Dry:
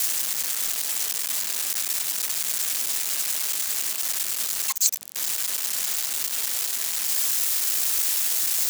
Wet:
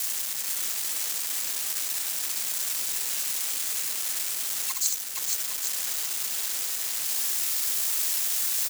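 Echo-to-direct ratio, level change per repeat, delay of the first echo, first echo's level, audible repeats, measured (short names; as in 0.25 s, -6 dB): -1.0 dB, no steady repeat, 65 ms, -6.0 dB, 3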